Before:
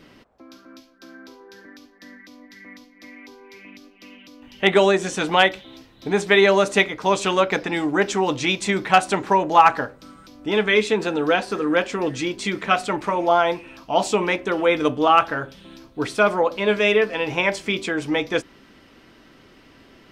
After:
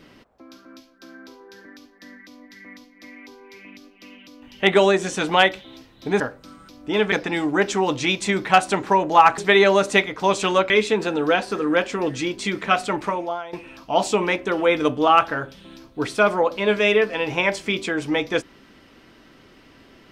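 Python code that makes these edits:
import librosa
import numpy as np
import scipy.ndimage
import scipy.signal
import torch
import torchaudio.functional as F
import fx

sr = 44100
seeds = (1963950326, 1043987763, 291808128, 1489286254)

y = fx.edit(x, sr, fx.swap(start_s=6.2, length_s=1.32, other_s=9.78, other_length_s=0.92),
    fx.fade_out_to(start_s=13.07, length_s=0.46, curve='qua', floor_db=-17.5), tone=tone)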